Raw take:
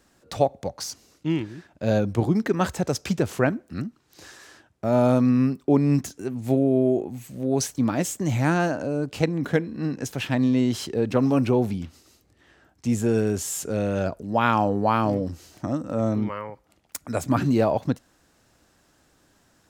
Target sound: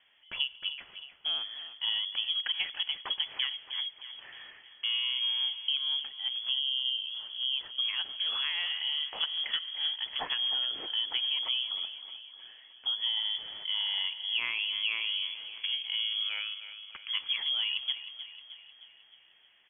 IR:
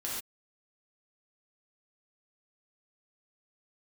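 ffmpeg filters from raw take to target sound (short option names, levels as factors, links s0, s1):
-filter_complex "[0:a]lowshelf=f=120:g=-10,acompressor=threshold=0.0447:ratio=6,aecho=1:1:310|620|930|1240|1550|1860:0.251|0.138|0.076|0.0418|0.023|0.0126,asplit=2[s0][s1];[1:a]atrim=start_sample=2205,asetrate=27342,aresample=44100[s2];[s1][s2]afir=irnorm=-1:irlink=0,volume=0.0562[s3];[s0][s3]amix=inputs=2:normalize=0,lowpass=f=3000:t=q:w=0.5098,lowpass=f=3000:t=q:w=0.6013,lowpass=f=3000:t=q:w=0.9,lowpass=f=3000:t=q:w=2.563,afreqshift=-3500,volume=0.794"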